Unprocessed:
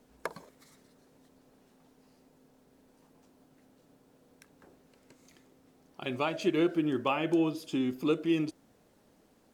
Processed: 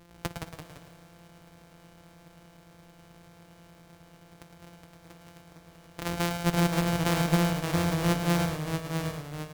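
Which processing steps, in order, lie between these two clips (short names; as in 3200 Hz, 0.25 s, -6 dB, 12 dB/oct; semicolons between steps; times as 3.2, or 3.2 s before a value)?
sample sorter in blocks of 256 samples; in parallel at +3 dB: compressor, threshold -44 dBFS, peak gain reduction 19.5 dB; on the sum: echoes that change speed 0.154 s, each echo -1 st, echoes 3, each echo -6 dB; echo 0.109 s -8.5 dB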